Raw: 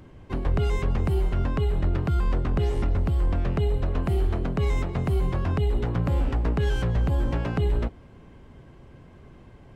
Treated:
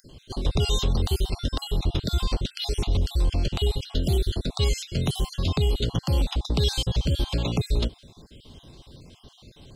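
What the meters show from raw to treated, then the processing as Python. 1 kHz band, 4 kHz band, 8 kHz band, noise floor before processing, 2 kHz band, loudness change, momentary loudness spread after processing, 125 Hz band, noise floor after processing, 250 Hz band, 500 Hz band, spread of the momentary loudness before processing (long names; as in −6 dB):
−3.0 dB, +14.5 dB, can't be measured, −49 dBFS, −2.5 dB, −0.5 dB, 4 LU, −1.0 dB, −55 dBFS, −1.0 dB, −1.5 dB, 2 LU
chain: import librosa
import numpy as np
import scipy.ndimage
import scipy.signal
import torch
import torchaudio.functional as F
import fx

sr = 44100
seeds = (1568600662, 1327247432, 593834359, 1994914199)

y = fx.spec_dropout(x, sr, seeds[0], share_pct=41)
y = fx.high_shelf_res(y, sr, hz=2600.0, db=13.0, q=3.0)
y = y * 10.0 ** (1.5 / 20.0)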